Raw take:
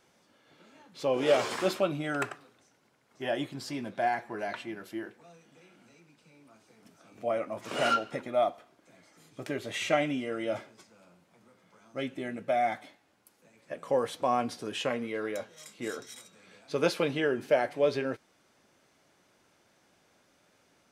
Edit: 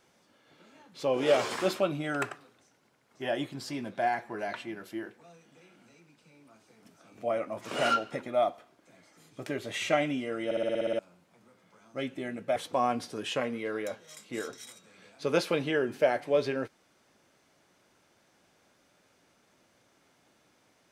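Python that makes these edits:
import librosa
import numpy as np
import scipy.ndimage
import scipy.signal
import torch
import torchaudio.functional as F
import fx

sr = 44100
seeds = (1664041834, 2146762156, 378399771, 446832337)

y = fx.edit(x, sr, fx.stutter_over(start_s=10.45, slice_s=0.06, count=9),
    fx.cut(start_s=12.56, length_s=1.49), tone=tone)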